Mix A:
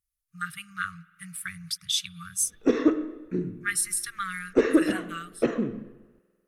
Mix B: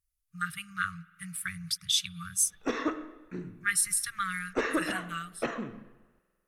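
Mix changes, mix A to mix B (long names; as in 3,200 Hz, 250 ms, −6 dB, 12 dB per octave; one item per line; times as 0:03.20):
background: add low shelf with overshoot 590 Hz −9.5 dB, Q 1.5
master: add low-shelf EQ 89 Hz +6.5 dB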